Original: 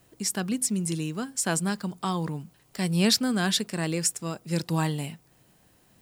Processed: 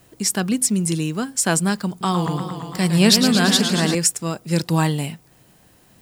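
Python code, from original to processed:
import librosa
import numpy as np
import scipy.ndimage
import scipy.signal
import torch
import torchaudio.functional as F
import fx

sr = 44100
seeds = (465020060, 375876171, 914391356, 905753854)

y = fx.echo_warbled(x, sr, ms=114, feedback_pct=78, rate_hz=2.8, cents=143, wet_db=-8.0, at=(1.89, 3.95))
y = F.gain(torch.from_numpy(y), 7.5).numpy()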